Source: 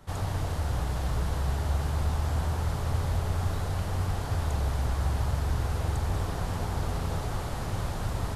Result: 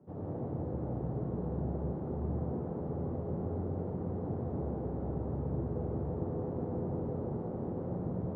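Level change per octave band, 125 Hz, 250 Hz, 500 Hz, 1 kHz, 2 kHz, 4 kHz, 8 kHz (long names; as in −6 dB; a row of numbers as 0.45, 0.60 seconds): −8.0 dB, +2.5 dB, +1.0 dB, −10.5 dB, below −20 dB, below −35 dB, below −35 dB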